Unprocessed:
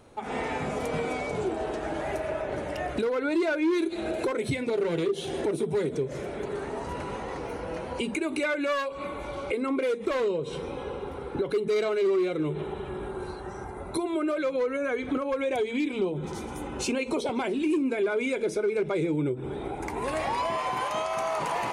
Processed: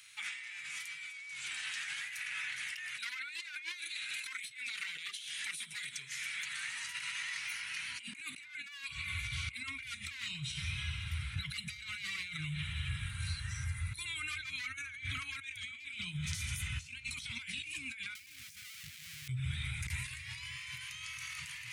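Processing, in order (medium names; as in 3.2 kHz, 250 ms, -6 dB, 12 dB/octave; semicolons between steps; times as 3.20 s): 18.15–19.28 s: one-bit comparator; Chebyshev band-stop 120–2100 Hz, order 3; bass shelf 350 Hz -8.5 dB; compressor with a negative ratio -49 dBFS, ratio -1; high-pass sweep 500 Hz -> 81 Hz, 7.66–8.99 s; feedback echo behind a low-pass 529 ms, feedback 35%, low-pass 3.2 kHz, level -20 dB; trim +5.5 dB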